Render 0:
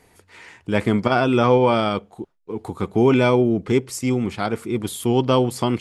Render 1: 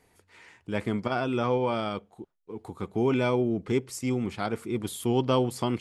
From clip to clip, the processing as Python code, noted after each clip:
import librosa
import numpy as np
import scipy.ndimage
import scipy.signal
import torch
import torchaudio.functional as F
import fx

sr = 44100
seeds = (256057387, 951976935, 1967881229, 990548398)

y = fx.rider(x, sr, range_db=10, speed_s=2.0)
y = y * 10.0 ** (-9.0 / 20.0)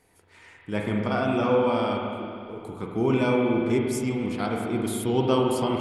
y = fx.peak_eq(x, sr, hz=9900.0, db=5.0, octaves=0.37)
y = fx.rev_spring(y, sr, rt60_s=2.4, pass_ms=(38, 44), chirp_ms=65, drr_db=-0.5)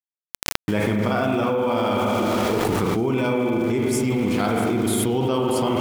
y = np.where(np.abs(x) >= 10.0 ** (-41.0 / 20.0), x, 0.0)
y = fx.env_flatten(y, sr, amount_pct=100)
y = y * 10.0 ** (-2.5 / 20.0)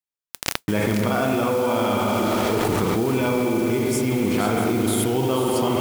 y = fx.mod_noise(x, sr, seeds[0], snr_db=19)
y = y + 10.0 ** (-11.5 / 20.0) * np.pad(y, (int(482 * sr / 1000.0), 0))[:len(y)]